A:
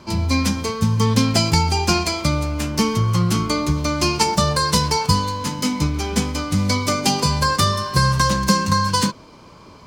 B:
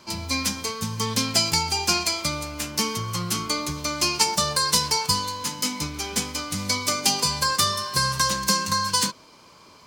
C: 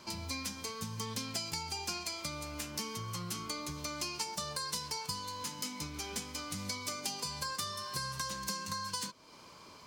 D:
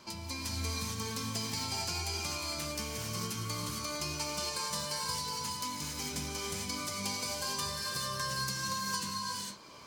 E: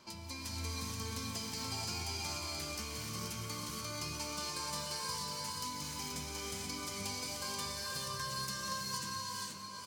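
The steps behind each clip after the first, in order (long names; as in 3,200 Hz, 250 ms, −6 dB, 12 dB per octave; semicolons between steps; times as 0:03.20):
spectral tilt +2.5 dB per octave; level −5.5 dB
downward compressor 3 to 1, threshold −36 dBFS, peak gain reduction 15 dB; level −3.5 dB
reverb whose tail is shaped and stops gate 480 ms rising, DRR −2.5 dB; level −1.5 dB
single-tap delay 480 ms −5 dB; level −5 dB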